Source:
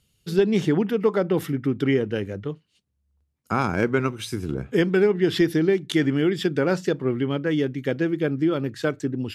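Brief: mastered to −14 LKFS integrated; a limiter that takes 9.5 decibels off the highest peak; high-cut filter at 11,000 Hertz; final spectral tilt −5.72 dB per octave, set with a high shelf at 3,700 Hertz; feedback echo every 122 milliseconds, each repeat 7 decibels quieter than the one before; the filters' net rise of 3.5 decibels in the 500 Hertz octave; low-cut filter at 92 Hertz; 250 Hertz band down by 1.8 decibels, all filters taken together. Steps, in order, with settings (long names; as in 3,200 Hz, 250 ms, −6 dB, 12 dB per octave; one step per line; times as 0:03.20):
high-pass filter 92 Hz
low-pass filter 11,000 Hz
parametric band 250 Hz −6 dB
parametric band 500 Hz +7 dB
high-shelf EQ 3,700 Hz −3.5 dB
brickwall limiter −15 dBFS
repeating echo 122 ms, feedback 45%, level −7 dB
level +11 dB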